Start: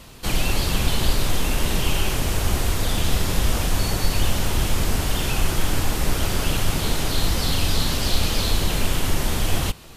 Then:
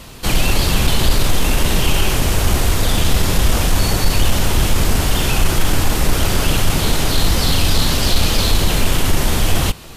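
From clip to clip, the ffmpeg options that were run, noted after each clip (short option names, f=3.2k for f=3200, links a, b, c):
-af "acontrast=82"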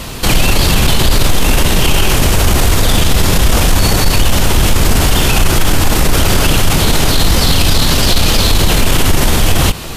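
-af "alimiter=level_in=13dB:limit=-1dB:release=50:level=0:latency=1,volume=-1dB"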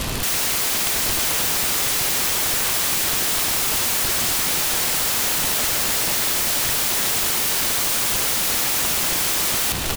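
-filter_complex "[0:a]aeval=exprs='(mod(6.68*val(0)+1,2)-1)/6.68':c=same,asplit=2[a][b];[b]aecho=0:1:958:0.335[c];[a][c]amix=inputs=2:normalize=0"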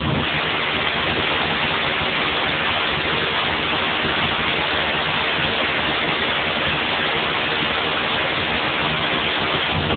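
-filter_complex "[0:a]asplit=2[a][b];[b]adelay=13,volume=-2.5dB[c];[a][c]amix=inputs=2:normalize=0,volume=8dB" -ar 8000 -c:a libopencore_amrnb -b:a 7950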